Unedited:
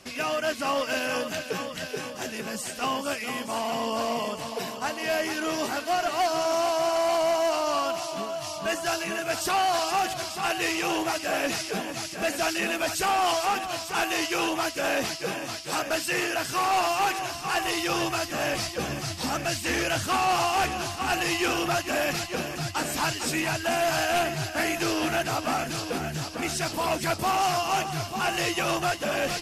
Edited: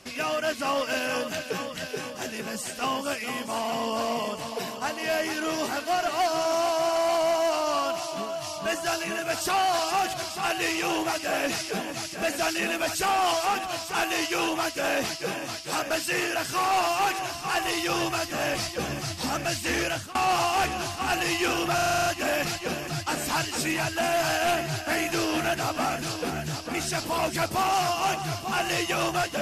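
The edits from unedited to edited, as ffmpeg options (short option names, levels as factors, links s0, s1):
-filter_complex "[0:a]asplit=10[s0][s1][s2][s3][s4][s5][s6][s7][s8][s9];[s0]atrim=end=20.15,asetpts=PTS-STARTPTS,afade=t=out:st=19.84:d=0.31:silence=0.0668344[s10];[s1]atrim=start=20.15:end=21.782,asetpts=PTS-STARTPTS,afade=t=in:d=0.004:c=hsin:silence=0.0668344[s11];[s2]atrim=start=21.738:end=21.782[s12];[s3]atrim=start=21.738:end=21.782[s13];[s4]atrim=start=21.738:end=21.782[s14];[s5]atrim=start=21.738:end=21.782[s15];[s6]atrim=start=21.738:end=21.782[s16];[s7]atrim=start=21.738:end=21.782[s17];[s8]atrim=start=21.738:end=21.782[s18];[s9]atrim=start=21.738[s19];[s10][s11]concat=n=2:v=0:a=1[s20];[s20][s12]acrossfade=d=0.004:c1=hsin:c2=hsin[s21];[s21][s13]acrossfade=d=0.004:c1=hsin:c2=hsin[s22];[s22][s14]acrossfade=d=0.004:c1=hsin:c2=hsin[s23];[s23][s15]acrossfade=d=0.004:c1=hsin:c2=hsin[s24];[s24][s16]acrossfade=d=0.004:c1=hsin:c2=hsin[s25];[s25][s17]acrossfade=d=0.004:c1=hsin:c2=hsin[s26];[s26][s18]acrossfade=d=0.004:c1=hsin:c2=hsin[s27];[s27][s19]acrossfade=d=0.004:c1=hsin:c2=hsin"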